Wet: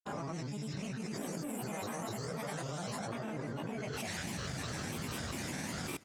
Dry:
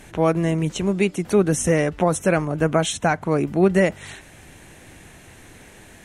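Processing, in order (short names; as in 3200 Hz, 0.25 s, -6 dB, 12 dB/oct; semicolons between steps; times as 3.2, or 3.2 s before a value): spectral swells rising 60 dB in 2.71 s; passive tone stack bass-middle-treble 5-5-5; reverb RT60 0.45 s, pre-delay 3 ms, DRR -7 dB; reverse; compressor 6:1, threshold -28 dBFS, peak gain reduction 18.5 dB; reverse; grains 0.1 s, grains 20/s, pitch spread up and down by 7 st; level quantiser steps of 23 dB; added harmonics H 7 -30 dB, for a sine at -33.5 dBFS; on a send: echo 0.533 s -21 dB; on the sum: gain +7 dB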